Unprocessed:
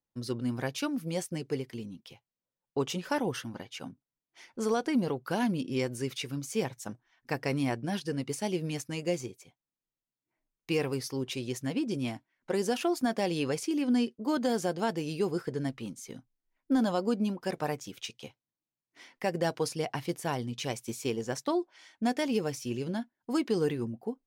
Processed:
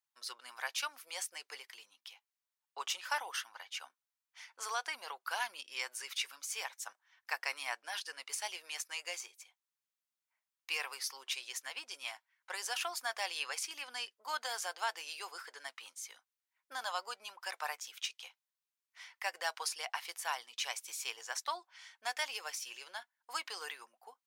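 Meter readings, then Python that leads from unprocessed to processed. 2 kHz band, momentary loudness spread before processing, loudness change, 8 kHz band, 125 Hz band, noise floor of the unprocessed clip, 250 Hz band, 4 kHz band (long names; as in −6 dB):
+1.0 dB, 13 LU, −7.5 dB, +1.0 dB, below −40 dB, below −85 dBFS, −39.5 dB, +1.0 dB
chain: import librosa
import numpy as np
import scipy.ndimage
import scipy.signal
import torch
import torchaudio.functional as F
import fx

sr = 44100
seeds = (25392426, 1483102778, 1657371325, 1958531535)

y = scipy.signal.sosfilt(scipy.signal.butter(4, 930.0, 'highpass', fs=sr, output='sos'), x)
y = F.gain(torch.from_numpy(y), 1.0).numpy()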